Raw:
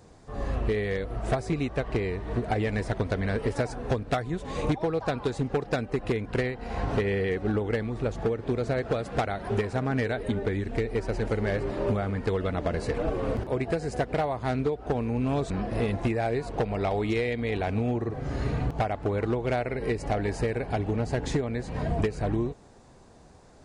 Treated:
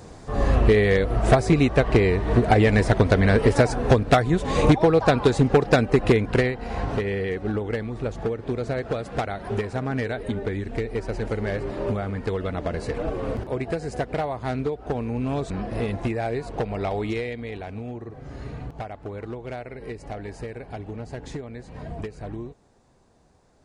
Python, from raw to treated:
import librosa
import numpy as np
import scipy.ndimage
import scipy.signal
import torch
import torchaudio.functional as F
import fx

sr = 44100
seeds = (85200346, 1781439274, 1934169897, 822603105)

y = fx.gain(x, sr, db=fx.line((6.09, 10.0), (6.99, 0.5), (17.05, 0.5), (17.66, -7.0)))